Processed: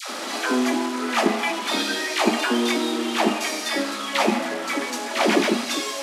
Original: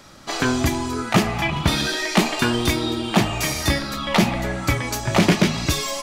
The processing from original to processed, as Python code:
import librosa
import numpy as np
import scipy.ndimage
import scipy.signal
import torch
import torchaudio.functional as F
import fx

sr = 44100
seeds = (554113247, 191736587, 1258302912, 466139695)

y = fx.delta_mod(x, sr, bps=64000, step_db=-20.0)
y = scipy.signal.sosfilt(scipy.signal.ellip(4, 1.0, 40, 230.0, 'highpass', fs=sr, output='sos'), y)
y = fx.high_shelf(y, sr, hz=6800.0, db=-9.5)
y = fx.dispersion(y, sr, late='lows', ms=98.0, hz=730.0)
y = fx.band_widen(y, sr, depth_pct=40)
y = y * librosa.db_to_amplitude(1.0)